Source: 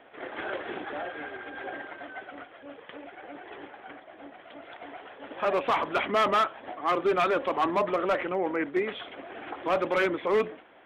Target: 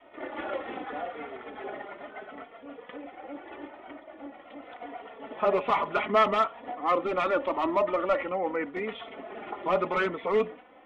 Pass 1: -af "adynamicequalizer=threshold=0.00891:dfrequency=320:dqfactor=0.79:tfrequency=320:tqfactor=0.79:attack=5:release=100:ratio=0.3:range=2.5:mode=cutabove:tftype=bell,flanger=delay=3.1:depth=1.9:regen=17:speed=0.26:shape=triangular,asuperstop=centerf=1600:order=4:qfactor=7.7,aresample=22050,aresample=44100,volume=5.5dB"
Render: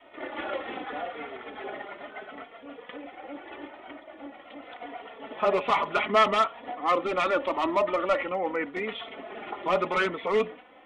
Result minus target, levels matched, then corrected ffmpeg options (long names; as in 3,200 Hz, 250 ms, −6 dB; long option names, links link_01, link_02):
8,000 Hz band +8.0 dB
-af "adynamicequalizer=threshold=0.00891:dfrequency=320:dqfactor=0.79:tfrequency=320:tqfactor=0.79:attack=5:release=100:ratio=0.3:range=2.5:mode=cutabove:tftype=bell,flanger=delay=3.1:depth=1.9:regen=17:speed=0.26:shape=triangular,asuperstop=centerf=1600:order=4:qfactor=7.7,highshelf=frequency=3100:gain=-11,aresample=22050,aresample=44100,volume=5.5dB"